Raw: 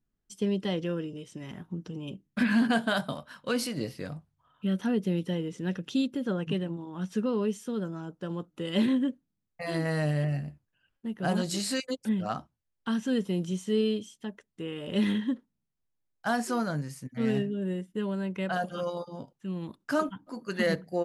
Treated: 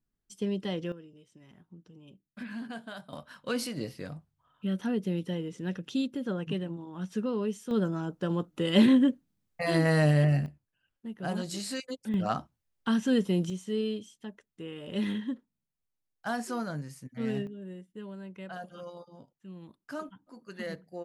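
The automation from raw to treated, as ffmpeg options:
-af "asetnsamples=n=441:p=0,asendcmd='0.92 volume volume -15dB;3.13 volume volume -2.5dB;7.71 volume volume 5dB;10.46 volume volume -5dB;12.14 volume volume 2.5dB;13.5 volume volume -4.5dB;17.47 volume volume -11dB',volume=-3dB"

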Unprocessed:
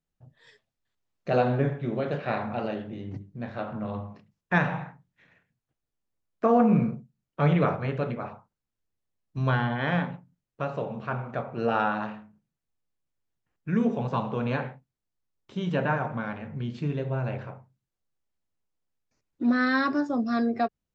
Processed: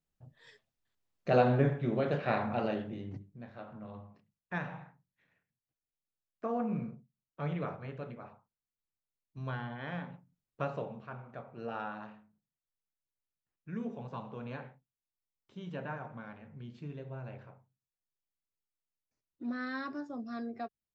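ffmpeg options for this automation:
-af "volume=7.5dB,afade=t=out:st=2.79:d=0.67:silence=0.266073,afade=t=in:st=10.01:d=0.61:silence=0.334965,afade=t=out:st=10.62:d=0.45:silence=0.316228"

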